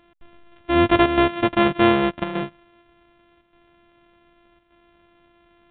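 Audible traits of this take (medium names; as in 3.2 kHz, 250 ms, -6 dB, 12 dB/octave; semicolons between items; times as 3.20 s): a buzz of ramps at a fixed pitch in blocks of 128 samples; chopped level 0.85 Hz, depth 60%, duty 90%; µ-law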